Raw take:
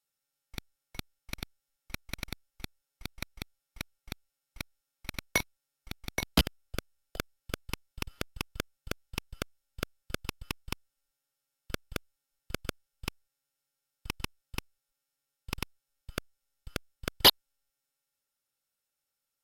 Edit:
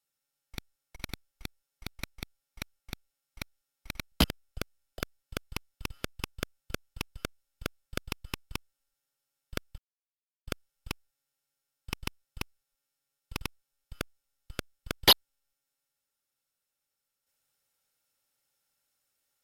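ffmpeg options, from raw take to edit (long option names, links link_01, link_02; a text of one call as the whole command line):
ffmpeg -i in.wav -filter_complex "[0:a]asplit=5[link_01][link_02][link_03][link_04][link_05];[link_01]atrim=end=0.962[link_06];[link_02]atrim=start=2.148:end=5.312[link_07];[link_03]atrim=start=6.288:end=11.95,asetpts=PTS-STARTPTS,afade=type=out:start_time=5.658:duration=0.004:curve=hsin[link_08];[link_04]atrim=start=11.95:end=12.64,asetpts=PTS-STARTPTS,volume=0[link_09];[link_05]atrim=start=12.64,asetpts=PTS-STARTPTS,afade=type=in:duration=0.004:curve=hsin[link_10];[link_06][link_07]acrossfade=duration=0.004:curve1=hsin:curve2=hsin[link_11];[link_08][link_09][link_10]concat=n=3:v=0:a=1[link_12];[link_11][link_12]acrossfade=duration=0.004:curve1=hsin:curve2=hsin" out.wav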